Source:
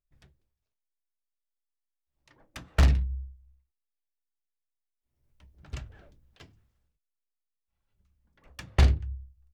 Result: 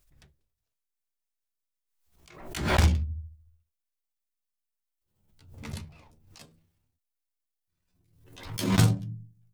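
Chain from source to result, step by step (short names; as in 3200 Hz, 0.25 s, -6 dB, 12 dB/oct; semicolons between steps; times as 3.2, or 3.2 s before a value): gliding pitch shift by +12 st starting unshifted; high shelf 5000 Hz +5.5 dB; backwards sustainer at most 70 dB/s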